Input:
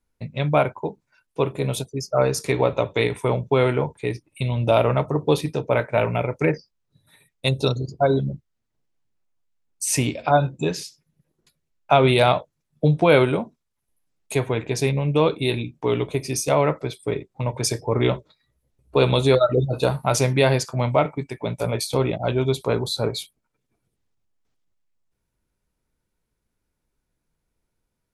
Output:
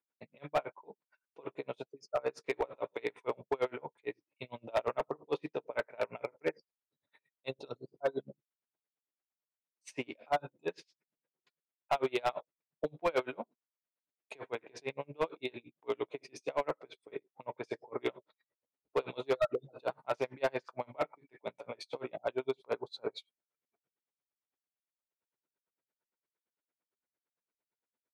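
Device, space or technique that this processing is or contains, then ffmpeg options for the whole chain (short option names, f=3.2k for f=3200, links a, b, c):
helicopter radio: -af "highpass=390,lowpass=2.7k,aeval=exprs='val(0)*pow(10,-33*(0.5-0.5*cos(2*PI*8.8*n/s))/20)':c=same,asoftclip=type=hard:threshold=-18dB,volume=-5.5dB"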